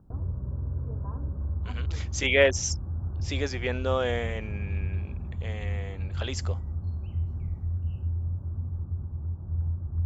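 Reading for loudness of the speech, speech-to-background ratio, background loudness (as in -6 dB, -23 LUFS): -28.5 LUFS, 5.0 dB, -33.5 LUFS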